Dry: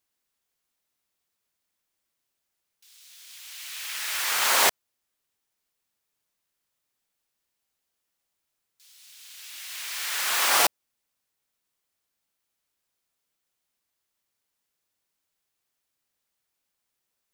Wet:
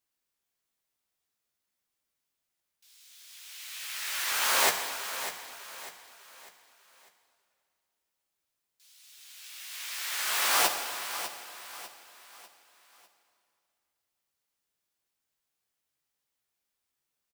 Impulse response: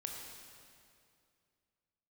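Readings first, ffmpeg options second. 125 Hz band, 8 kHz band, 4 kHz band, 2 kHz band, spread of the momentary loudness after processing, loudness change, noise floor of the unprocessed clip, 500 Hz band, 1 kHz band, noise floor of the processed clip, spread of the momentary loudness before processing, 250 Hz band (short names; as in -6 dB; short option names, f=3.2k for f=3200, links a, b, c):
n/a, -3.5 dB, -3.5 dB, -3.0 dB, 21 LU, -5.5 dB, -81 dBFS, -3.0 dB, -3.0 dB, -84 dBFS, 21 LU, -3.0 dB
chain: -filter_complex "[0:a]aecho=1:1:598|1196|1794|2392:0.266|0.104|0.0405|0.0158,asplit=2[a][b];[1:a]atrim=start_sample=2205,adelay=15[c];[b][c]afir=irnorm=-1:irlink=0,volume=-1.5dB[d];[a][d]amix=inputs=2:normalize=0,volume=-5.5dB"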